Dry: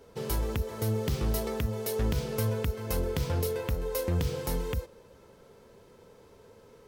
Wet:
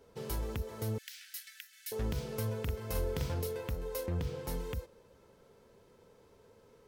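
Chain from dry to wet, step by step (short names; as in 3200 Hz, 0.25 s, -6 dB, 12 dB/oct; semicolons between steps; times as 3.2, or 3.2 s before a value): 0.98–1.92 steep high-pass 1500 Hz 96 dB/oct; 2.63–3.34 doubler 44 ms -4 dB; 4.06–4.48 high shelf 4400 Hz -8.5 dB; gain -6.5 dB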